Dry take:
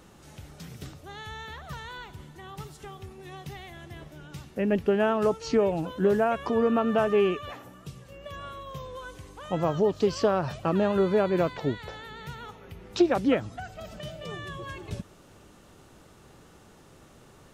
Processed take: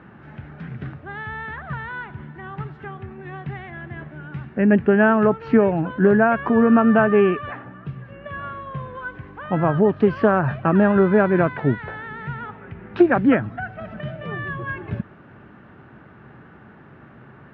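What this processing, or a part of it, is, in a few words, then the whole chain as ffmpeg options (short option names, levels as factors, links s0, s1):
bass cabinet: -af "highpass=79,equalizer=f=130:t=q:w=4:g=6,equalizer=f=220:t=q:w=4:g=5,equalizer=f=510:t=q:w=4:g=-5,equalizer=f=1600:t=q:w=4:g=8,lowpass=f=2300:w=0.5412,lowpass=f=2300:w=1.3066,volume=2.24"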